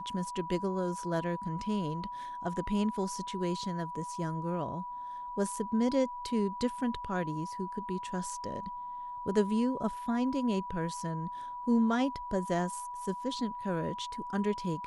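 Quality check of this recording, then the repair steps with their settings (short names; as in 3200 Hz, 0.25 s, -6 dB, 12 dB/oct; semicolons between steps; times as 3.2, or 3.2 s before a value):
tone 980 Hz -38 dBFS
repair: notch 980 Hz, Q 30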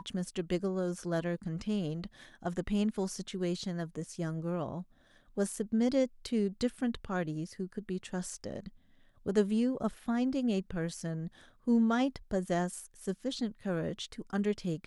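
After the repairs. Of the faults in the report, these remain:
none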